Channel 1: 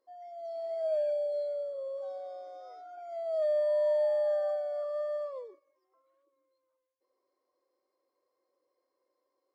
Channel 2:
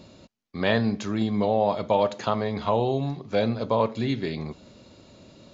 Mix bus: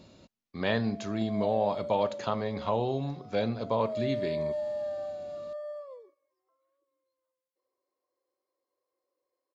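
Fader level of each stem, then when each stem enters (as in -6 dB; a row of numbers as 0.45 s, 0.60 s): -5.0 dB, -5.5 dB; 0.55 s, 0.00 s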